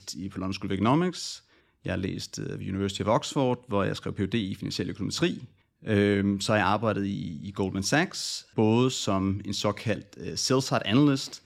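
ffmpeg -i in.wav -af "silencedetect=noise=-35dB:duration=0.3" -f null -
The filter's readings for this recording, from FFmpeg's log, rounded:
silence_start: 1.36
silence_end: 1.86 | silence_duration: 0.50
silence_start: 5.45
silence_end: 5.85 | silence_duration: 0.40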